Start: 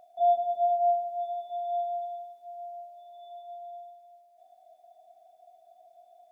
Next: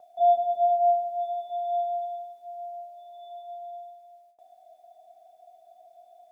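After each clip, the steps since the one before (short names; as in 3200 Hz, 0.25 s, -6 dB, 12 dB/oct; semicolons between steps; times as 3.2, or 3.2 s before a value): gate with hold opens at -53 dBFS; gain +3 dB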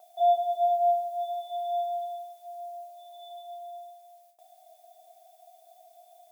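tilt +4 dB/oct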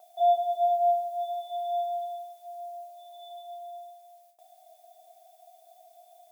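nothing audible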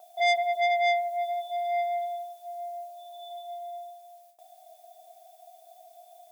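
core saturation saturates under 2100 Hz; gain +3 dB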